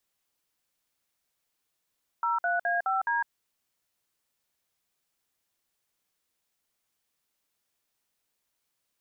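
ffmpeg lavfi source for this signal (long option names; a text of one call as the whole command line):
ffmpeg -f lavfi -i "aevalsrc='0.0447*clip(min(mod(t,0.21),0.156-mod(t,0.21))/0.002,0,1)*(eq(floor(t/0.21),0)*(sin(2*PI*941*mod(t,0.21))+sin(2*PI*1336*mod(t,0.21)))+eq(floor(t/0.21),1)*(sin(2*PI*697*mod(t,0.21))+sin(2*PI*1477*mod(t,0.21)))+eq(floor(t/0.21),2)*(sin(2*PI*697*mod(t,0.21))+sin(2*PI*1633*mod(t,0.21)))+eq(floor(t/0.21),3)*(sin(2*PI*770*mod(t,0.21))+sin(2*PI*1336*mod(t,0.21)))+eq(floor(t/0.21),4)*(sin(2*PI*941*mod(t,0.21))+sin(2*PI*1633*mod(t,0.21))))':duration=1.05:sample_rate=44100" out.wav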